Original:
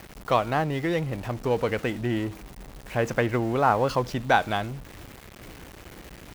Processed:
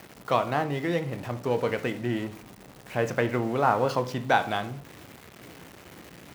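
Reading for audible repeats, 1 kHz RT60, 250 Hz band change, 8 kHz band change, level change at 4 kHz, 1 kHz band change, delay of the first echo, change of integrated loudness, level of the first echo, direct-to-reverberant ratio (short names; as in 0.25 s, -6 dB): none, 0.45 s, -2.0 dB, -2.0 dB, -1.5 dB, -1.5 dB, none, -1.5 dB, none, 9.0 dB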